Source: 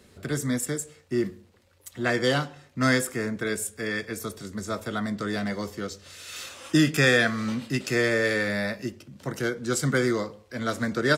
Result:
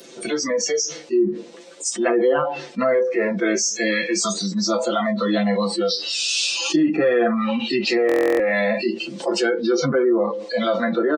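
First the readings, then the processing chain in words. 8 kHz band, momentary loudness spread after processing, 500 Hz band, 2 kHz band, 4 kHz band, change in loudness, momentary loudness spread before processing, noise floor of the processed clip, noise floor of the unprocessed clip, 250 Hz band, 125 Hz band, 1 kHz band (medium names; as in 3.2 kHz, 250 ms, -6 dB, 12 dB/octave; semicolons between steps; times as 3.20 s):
+9.0 dB, 6 LU, +9.5 dB, +1.0 dB, +8.0 dB, +6.0 dB, 14 LU, -42 dBFS, -59 dBFS, +6.0 dB, -4.0 dB, +7.0 dB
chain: knee-point frequency compression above 3.2 kHz 1.5:1; low-pass that closes with the level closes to 1.2 kHz, closed at -20.5 dBFS; high-pass 260 Hz 24 dB/octave; spectral noise reduction 21 dB; peaking EQ 1.5 kHz -8.5 dB 1.8 oct; comb 5.9 ms, depth 73%; level rider gain up to 6.5 dB; flange 0.4 Hz, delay 7.1 ms, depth 6.6 ms, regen +7%; buffer glitch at 8.07 s, samples 1024, times 13; level flattener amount 70%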